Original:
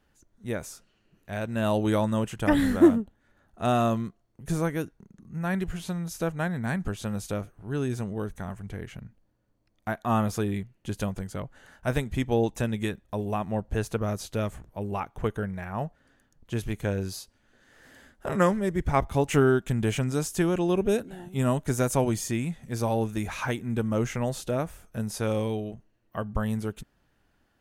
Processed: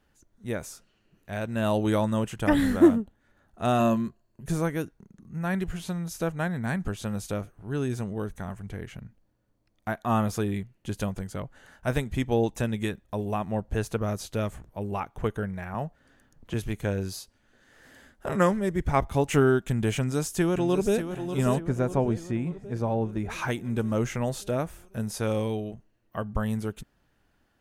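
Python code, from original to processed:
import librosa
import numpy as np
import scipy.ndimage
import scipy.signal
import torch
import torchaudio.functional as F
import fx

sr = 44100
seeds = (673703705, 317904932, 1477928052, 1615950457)

y = fx.ripple_eq(x, sr, per_octave=1.4, db=8, at=(3.79, 4.46))
y = fx.band_squash(y, sr, depth_pct=40, at=(15.74, 16.54))
y = fx.echo_throw(y, sr, start_s=19.97, length_s=1.09, ms=590, feedback_pct=60, wet_db=-9.0)
y = fx.lowpass(y, sr, hz=1100.0, slope=6, at=(21.58, 23.29), fade=0.02)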